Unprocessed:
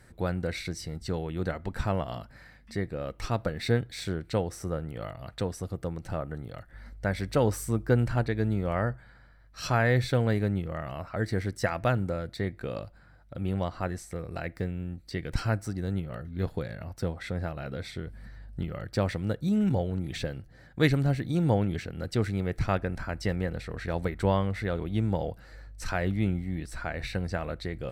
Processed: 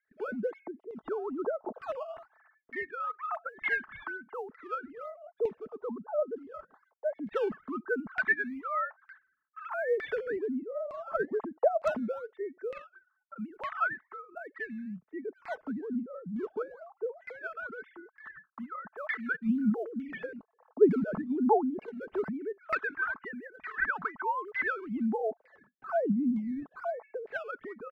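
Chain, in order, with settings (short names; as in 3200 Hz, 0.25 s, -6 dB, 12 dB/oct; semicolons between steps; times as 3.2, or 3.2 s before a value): sine-wave speech; gate with hold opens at -48 dBFS; bell 1300 Hz +14 dB 1.2 oct; comb 4.6 ms, depth 37%; in parallel at -11 dB: decimation with a swept rate 13×, swing 160% 1.1 Hz; on the sum: LFO low-pass saw down 1.1 Hz 570–2200 Hz; short-mantissa float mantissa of 8-bit; phaser stages 2, 0.2 Hz, lowest notch 460–1900 Hz; gain -7.5 dB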